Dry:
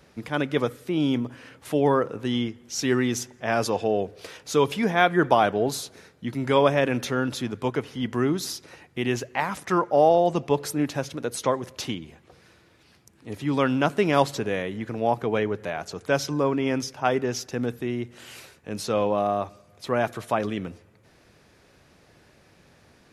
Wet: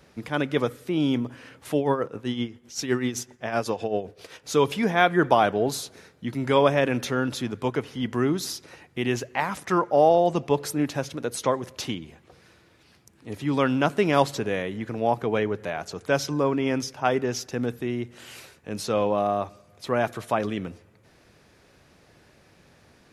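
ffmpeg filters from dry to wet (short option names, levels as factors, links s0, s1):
-filter_complex "[0:a]asettb=1/sr,asplit=3[s0][s1][s2];[s0]atrim=end=1.784[s3];[s1]atrim=start=1.78:end=4.44,asetpts=PTS-STARTPTS,afade=t=in:d=0.004:c=qsin,afade=t=out:st=2.656:d=0.004:c=qsin,tremolo=f=7.8:d=0.68[s4];[s2]atrim=start=4.436[s5];[s3][s4]acrossfade=d=0.004:c1=hsin:c2=qsin[s6];[s6][s5]acrossfade=d=0.004:c1=qsin:c2=hsin"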